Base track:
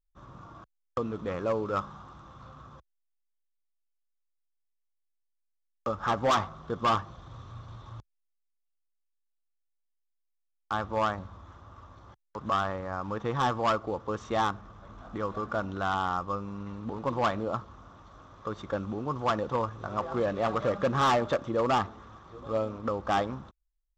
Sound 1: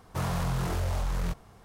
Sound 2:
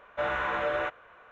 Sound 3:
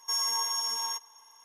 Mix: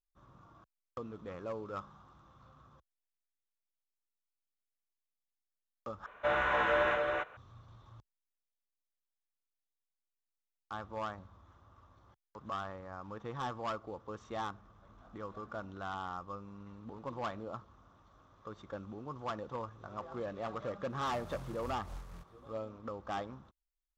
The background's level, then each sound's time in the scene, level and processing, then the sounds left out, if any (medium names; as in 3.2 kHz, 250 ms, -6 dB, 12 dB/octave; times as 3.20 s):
base track -11.5 dB
6.06 s: replace with 2 -1 dB + delay 279 ms -3 dB
20.90 s: add 1 -13.5 dB + random flutter of the level
not used: 3